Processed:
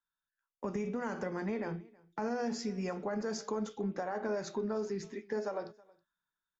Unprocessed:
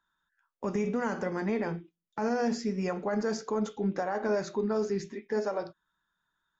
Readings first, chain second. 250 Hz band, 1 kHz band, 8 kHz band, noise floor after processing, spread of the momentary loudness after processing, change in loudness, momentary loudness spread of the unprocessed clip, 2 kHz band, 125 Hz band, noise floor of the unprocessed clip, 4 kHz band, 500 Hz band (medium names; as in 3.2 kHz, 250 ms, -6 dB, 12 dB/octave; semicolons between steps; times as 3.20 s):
-5.5 dB, -5.5 dB, no reading, under -85 dBFS, 5 LU, -5.5 dB, 6 LU, -5.5 dB, -5.5 dB, -83 dBFS, -3.0 dB, -5.5 dB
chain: compression 3:1, threshold -34 dBFS, peak gain reduction 7.5 dB; on a send: delay 322 ms -21 dB; on the sum: three bands expanded up and down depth 40%